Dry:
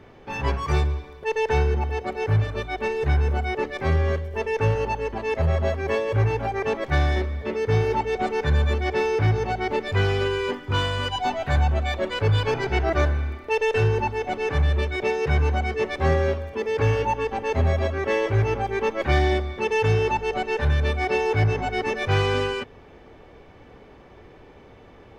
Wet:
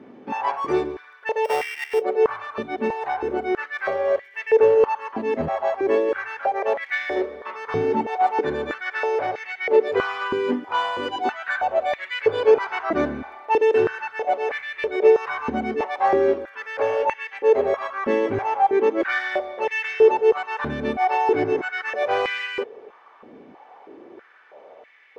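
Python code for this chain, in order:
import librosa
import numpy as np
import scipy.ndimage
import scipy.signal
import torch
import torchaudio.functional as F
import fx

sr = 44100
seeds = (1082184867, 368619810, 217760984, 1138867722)

y = fx.sample_sort(x, sr, block=16, at=(1.44, 2.0), fade=0.02)
y = fx.high_shelf(y, sr, hz=3100.0, db=-10.5)
y = fx.filter_held_highpass(y, sr, hz=3.1, low_hz=240.0, high_hz=2000.0)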